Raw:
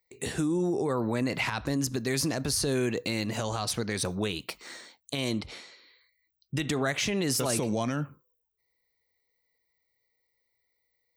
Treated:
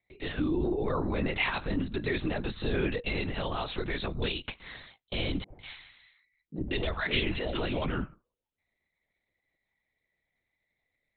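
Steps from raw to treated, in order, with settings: treble shelf 2.8 kHz +8 dB; LPC vocoder at 8 kHz whisper; 5.44–7.82 s: three bands offset in time mids, lows, highs 60/150 ms, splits 170/740 Hz; trim -1.5 dB

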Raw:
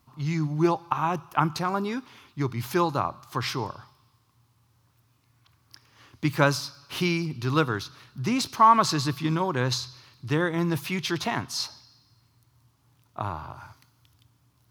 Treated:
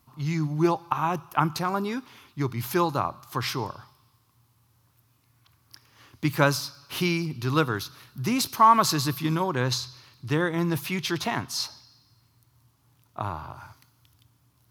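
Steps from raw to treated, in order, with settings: peaking EQ 13 kHz +7.5 dB 0.74 oct, from 7.76 s +14 dB, from 9.44 s +5 dB

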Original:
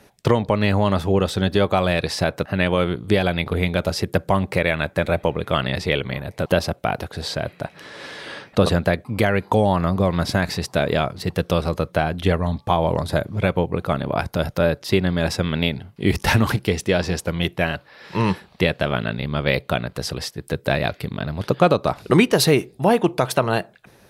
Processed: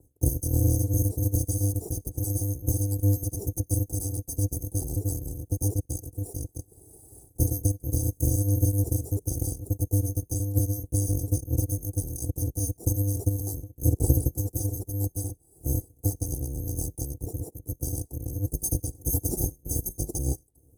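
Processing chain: bit-reversed sample order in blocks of 256 samples; high-pass 40 Hz; dynamic bell 4.3 kHz, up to +8 dB, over -36 dBFS, Q 0.87; Chebyshev band-stop 390–9200 Hz, order 3; distance through air 120 m; tape speed +16%; trim +7 dB

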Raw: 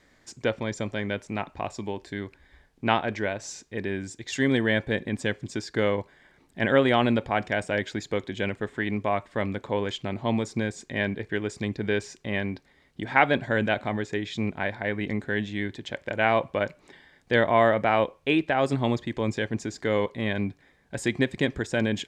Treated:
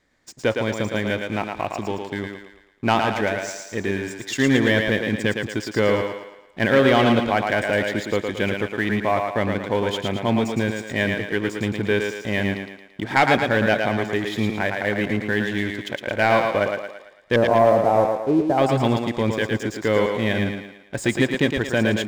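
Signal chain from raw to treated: 17.36–18.58 s: low-pass 1 kHz 24 dB/octave; waveshaping leveller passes 2; thinning echo 112 ms, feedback 48%, high-pass 260 Hz, level -4 dB; trim -2.5 dB

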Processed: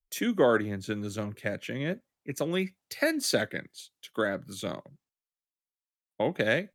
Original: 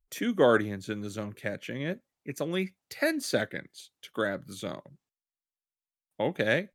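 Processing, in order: compression 2:1, threshold -29 dBFS, peak gain reduction 7 dB; three bands expanded up and down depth 40%; trim +3.5 dB

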